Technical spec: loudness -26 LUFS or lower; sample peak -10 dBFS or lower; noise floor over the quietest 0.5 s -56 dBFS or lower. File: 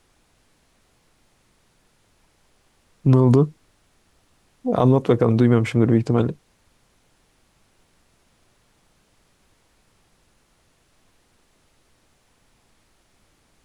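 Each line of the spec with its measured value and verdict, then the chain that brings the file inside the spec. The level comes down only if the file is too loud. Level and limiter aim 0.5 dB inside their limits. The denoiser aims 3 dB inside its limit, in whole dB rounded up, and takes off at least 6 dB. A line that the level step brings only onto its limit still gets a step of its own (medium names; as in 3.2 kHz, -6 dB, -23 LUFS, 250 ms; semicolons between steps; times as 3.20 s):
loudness -18.5 LUFS: fail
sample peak -5.5 dBFS: fail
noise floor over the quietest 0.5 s -62 dBFS: pass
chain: trim -8 dB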